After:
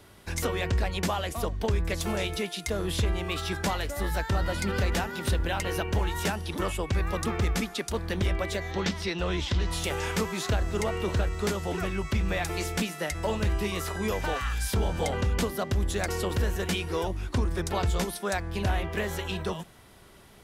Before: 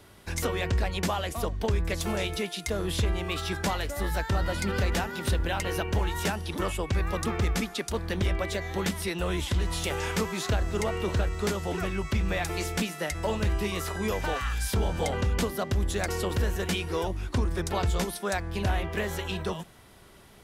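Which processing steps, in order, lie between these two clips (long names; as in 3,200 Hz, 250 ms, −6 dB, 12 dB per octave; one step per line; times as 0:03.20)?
0:08.71–0:09.71: high shelf with overshoot 7,600 Hz −13.5 dB, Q 1.5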